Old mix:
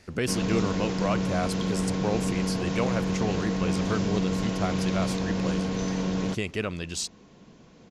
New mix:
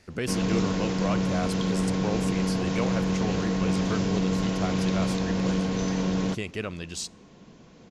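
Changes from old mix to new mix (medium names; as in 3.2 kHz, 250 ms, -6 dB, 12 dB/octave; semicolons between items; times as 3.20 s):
speech -4.0 dB; reverb: on, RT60 0.65 s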